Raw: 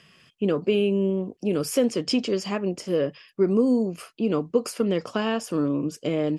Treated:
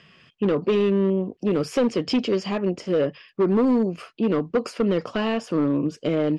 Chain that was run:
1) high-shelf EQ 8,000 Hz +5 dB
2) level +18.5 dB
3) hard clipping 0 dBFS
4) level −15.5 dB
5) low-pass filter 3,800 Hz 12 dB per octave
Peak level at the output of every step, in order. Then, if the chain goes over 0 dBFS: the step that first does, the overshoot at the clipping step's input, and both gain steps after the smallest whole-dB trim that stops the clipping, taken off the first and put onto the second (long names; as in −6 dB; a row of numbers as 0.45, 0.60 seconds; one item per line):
−9.0, +9.5, 0.0, −15.5, −15.0 dBFS
step 2, 9.5 dB
step 2 +8.5 dB, step 4 −5.5 dB